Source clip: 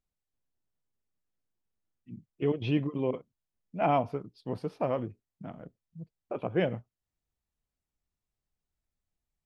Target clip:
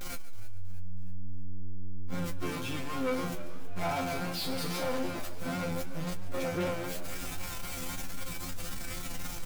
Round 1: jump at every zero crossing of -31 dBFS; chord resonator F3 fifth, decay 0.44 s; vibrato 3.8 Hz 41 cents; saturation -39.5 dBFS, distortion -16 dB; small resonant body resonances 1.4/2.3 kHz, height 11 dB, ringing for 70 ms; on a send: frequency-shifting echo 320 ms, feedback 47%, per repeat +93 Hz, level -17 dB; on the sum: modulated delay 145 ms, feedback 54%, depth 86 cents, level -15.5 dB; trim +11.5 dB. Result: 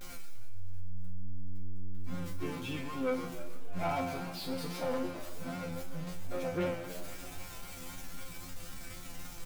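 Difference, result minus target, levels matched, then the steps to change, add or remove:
jump at every zero crossing: distortion -6 dB
change: jump at every zero crossing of -22 dBFS

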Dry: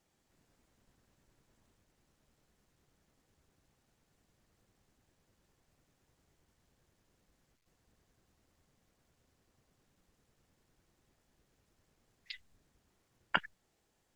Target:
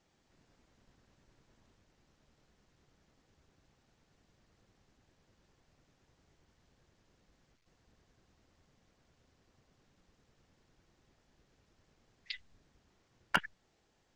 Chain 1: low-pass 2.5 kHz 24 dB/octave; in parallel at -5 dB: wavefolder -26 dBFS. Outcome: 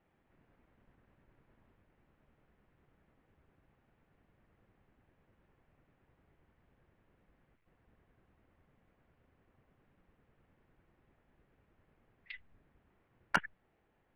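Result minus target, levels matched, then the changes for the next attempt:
8 kHz band -3.0 dB
change: low-pass 6.6 kHz 24 dB/octave

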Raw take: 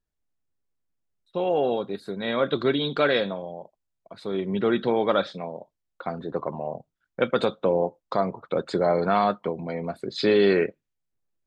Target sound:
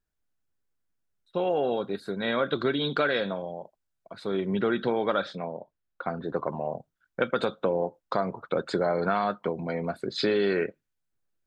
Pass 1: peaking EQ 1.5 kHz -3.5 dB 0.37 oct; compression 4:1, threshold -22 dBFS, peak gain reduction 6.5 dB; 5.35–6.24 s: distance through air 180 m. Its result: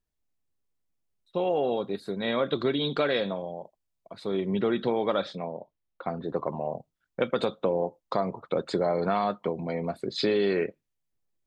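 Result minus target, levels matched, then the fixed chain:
2 kHz band -4.0 dB
peaking EQ 1.5 kHz +6 dB 0.37 oct; compression 4:1, threshold -22 dBFS, peak gain reduction 6.5 dB; 5.35–6.24 s: distance through air 180 m

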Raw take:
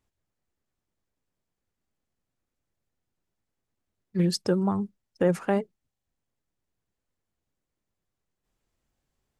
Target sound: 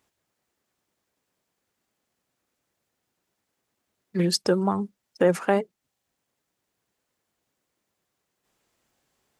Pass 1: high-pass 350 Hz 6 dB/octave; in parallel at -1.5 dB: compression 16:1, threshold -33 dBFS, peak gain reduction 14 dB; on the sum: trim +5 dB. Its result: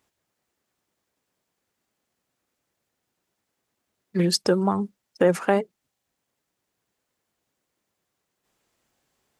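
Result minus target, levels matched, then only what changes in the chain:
compression: peak gain reduction -9 dB
change: compression 16:1, threshold -42.5 dBFS, peak gain reduction 23 dB

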